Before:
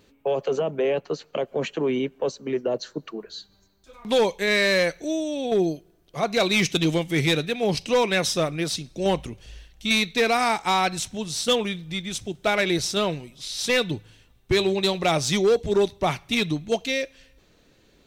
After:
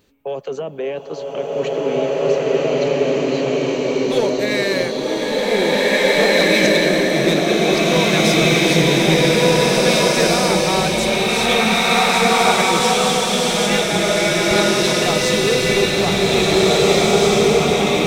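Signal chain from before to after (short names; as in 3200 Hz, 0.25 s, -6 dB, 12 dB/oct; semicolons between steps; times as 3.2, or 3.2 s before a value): high shelf 11000 Hz +6.5 dB; bloom reverb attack 2.03 s, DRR -10 dB; gain -1.5 dB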